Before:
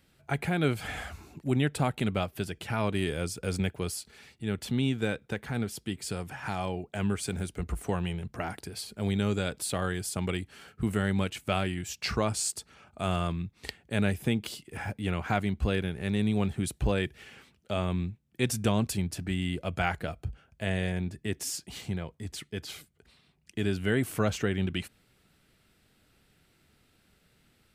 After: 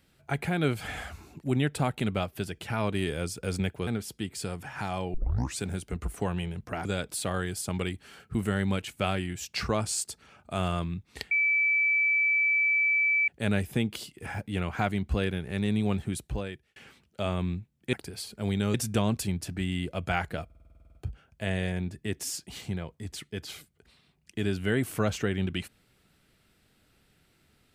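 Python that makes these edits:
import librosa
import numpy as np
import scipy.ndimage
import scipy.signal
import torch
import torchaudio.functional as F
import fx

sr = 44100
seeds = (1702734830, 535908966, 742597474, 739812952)

y = fx.edit(x, sr, fx.cut(start_s=3.87, length_s=1.67),
    fx.tape_start(start_s=6.81, length_s=0.45),
    fx.move(start_s=8.52, length_s=0.81, to_s=18.44),
    fx.insert_tone(at_s=13.79, length_s=1.97, hz=2310.0, db=-21.5),
    fx.fade_out_span(start_s=16.51, length_s=0.76),
    fx.stutter(start_s=20.15, slice_s=0.05, count=11), tone=tone)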